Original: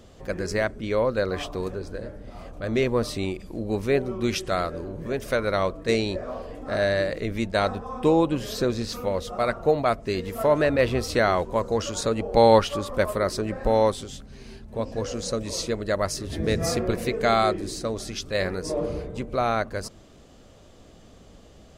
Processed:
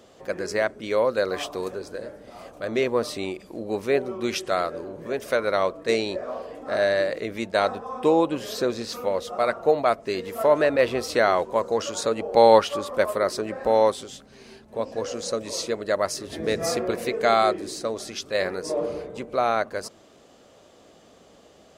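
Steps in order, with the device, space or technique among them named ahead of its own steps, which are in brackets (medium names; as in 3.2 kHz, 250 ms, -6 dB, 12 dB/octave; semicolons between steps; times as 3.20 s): filter by subtraction (in parallel: low-pass 550 Hz 12 dB/octave + polarity flip); 0.80–2.65 s: on the sum: treble shelf 5.1 kHz +7 dB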